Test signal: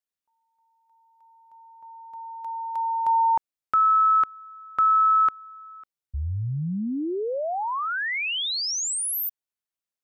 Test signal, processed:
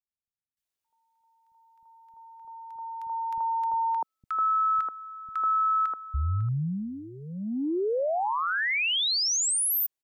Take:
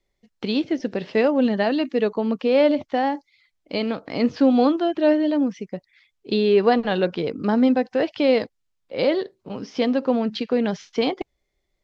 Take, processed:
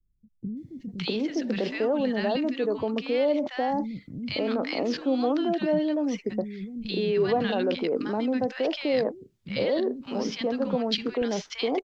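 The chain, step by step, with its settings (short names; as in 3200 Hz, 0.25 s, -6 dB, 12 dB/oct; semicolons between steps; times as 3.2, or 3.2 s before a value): in parallel at +3 dB: negative-ratio compressor -28 dBFS, ratio -1; on the sum: three bands offset in time lows, highs, mids 0.57/0.65 s, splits 210/1200 Hz; gain -7.5 dB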